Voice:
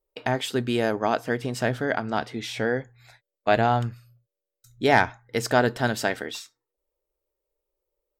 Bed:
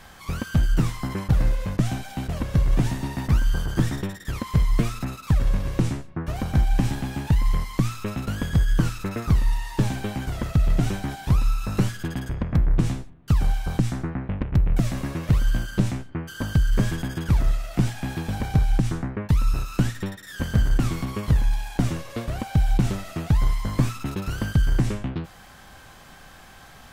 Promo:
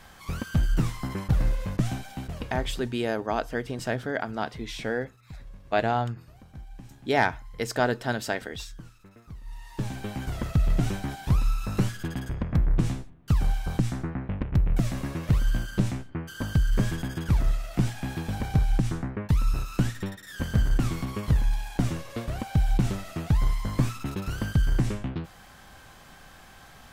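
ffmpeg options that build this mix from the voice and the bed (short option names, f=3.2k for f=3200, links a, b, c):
-filter_complex "[0:a]adelay=2250,volume=-4dB[a];[1:a]volume=17dB,afade=t=out:st=1.92:d=0.99:silence=0.1,afade=t=in:st=9.42:d=0.88:silence=0.0944061[b];[a][b]amix=inputs=2:normalize=0"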